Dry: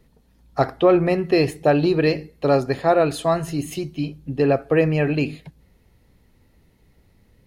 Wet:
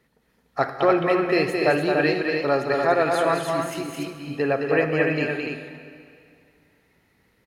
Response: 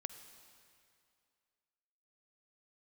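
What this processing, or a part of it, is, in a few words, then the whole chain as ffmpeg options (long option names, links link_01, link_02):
stadium PA: -filter_complex "[0:a]highpass=frequency=230:poles=1,equalizer=frequency=1700:width_type=o:width=1.2:gain=8,aecho=1:1:215.7|291.5:0.562|0.562[link_01];[1:a]atrim=start_sample=2205[link_02];[link_01][link_02]afir=irnorm=-1:irlink=0,volume=-1.5dB"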